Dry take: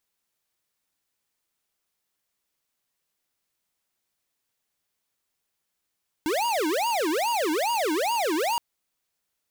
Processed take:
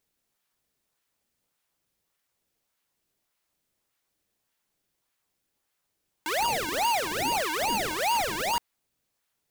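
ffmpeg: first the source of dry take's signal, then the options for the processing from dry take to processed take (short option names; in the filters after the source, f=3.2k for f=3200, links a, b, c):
-f lavfi -i "aevalsrc='0.0562*(2*lt(mod((628.5*t-326.5/(2*PI*2.4)*sin(2*PI*2.4*t)),1),0.5)-1)':d=2.32:s=44100"
-filter_complex "[0:a]highpass=830,asplit=2[a][b];[b]acrusher=samples=23:mix=1:aa=0.000001:lfo=1:lforange=36.8:lforate=1.7,volume=-7dB[c];[a][c]amix=inputs=2:normalize=0"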